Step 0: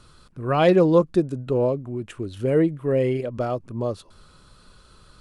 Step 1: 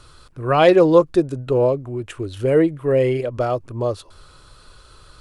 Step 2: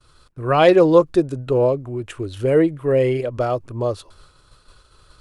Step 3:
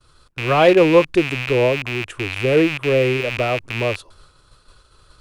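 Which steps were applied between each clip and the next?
parametric band 200 Hz −13 dB 0.61 octaves; level +5.5 dB
downward expander −40 dBFS
loose part that buzzes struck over −35 dBFS, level −13 dBFS

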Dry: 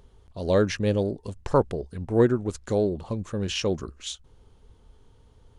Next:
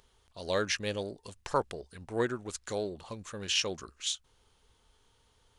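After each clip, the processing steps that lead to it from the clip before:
tilt shelving filter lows −9 dB, about 740 Hz
level −6.5 dB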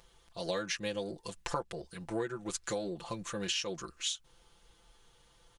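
comb filter 5.9 ms, depth 90%
downward compressor 8 to 1, threshold −33 dBFS, peak gain reduction 12.5 dB
level +1.5 dB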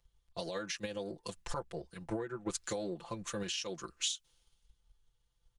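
brickwall limiter −29.5 dBFS, peak gain reduction 10.5 dB
transient designer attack +6 dB, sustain −1 dB
multiband upward and downward expander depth 70%
level −1.5 dB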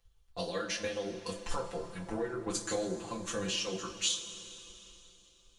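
coupled-rooms reverb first 0.24 s, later 3.4 s, from −18 dB, DRR −1.5 dB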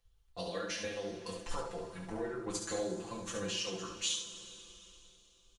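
single-tap delay 70 ms −5.5 dB
level −4 dB

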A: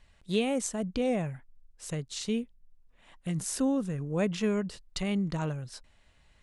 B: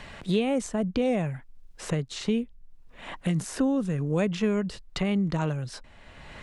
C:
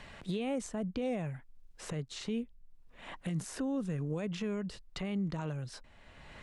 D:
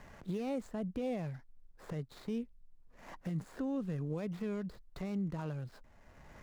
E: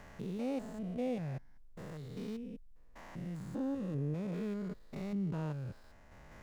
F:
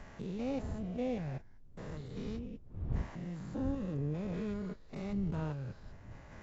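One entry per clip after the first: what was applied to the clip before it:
high-shelf EQ 6,000 Hz −9.5 dB; multiband upward and downward compressor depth 70%; level +4 dB
brickwall limiter −20 dBFS, peak gain reduction 7 dB; level −7 dB
running median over 15 samples; level −2 dB
spectrum averaged block by block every 200 ms; level +2.5 dB
wind on the microphone 99 Hz −45 dBFS; AAC 24 kbit/s 22,050 Hz

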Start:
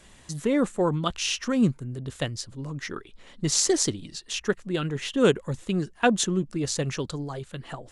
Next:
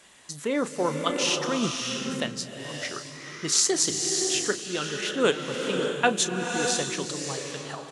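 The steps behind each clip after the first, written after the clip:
high-pass filter 580 Hz 6 dB per octave
double-tracking delay 34 ms −13.5 dB
slow-attack reverb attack 600 ms, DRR 2.5 dB
level +1.5 dB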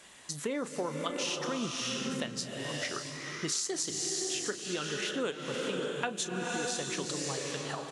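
downward compressor 6 to 1, threshold −31 dBFS, peak gain reduction 14.5 dB

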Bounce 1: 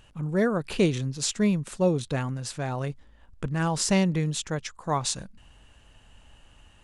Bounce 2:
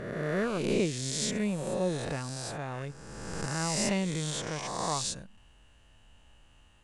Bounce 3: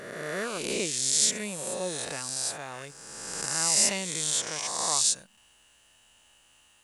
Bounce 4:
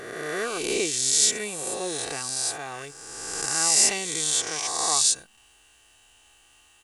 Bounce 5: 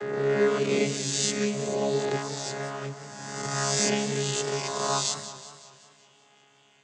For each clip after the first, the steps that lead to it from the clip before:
peak hold with a rise ahead of every peak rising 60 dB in 1.78 s; level −8.5 dB
RIAA equalisation recording
comb filter 2.6 ms, depth 56%; level +2.5 dB
channel vocoder with a chord as carrier bare fifth, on C#3; feedback echo with a swinging delay time 187 ms, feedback 55%, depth 113 cents, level −12.5 dB

